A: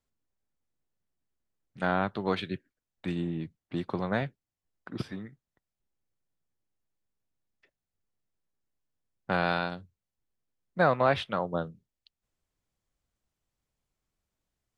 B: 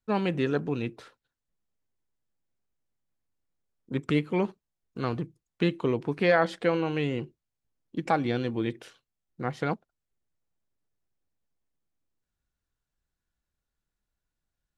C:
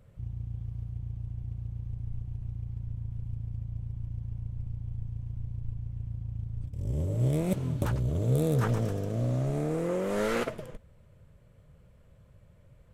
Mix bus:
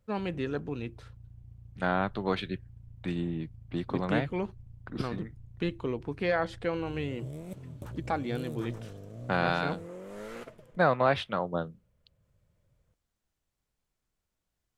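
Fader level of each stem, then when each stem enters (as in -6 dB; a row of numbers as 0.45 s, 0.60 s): -0.5 dB, -6.0 dB, -13.5 dB; 0.00 s, 0.00 s, 0.00 s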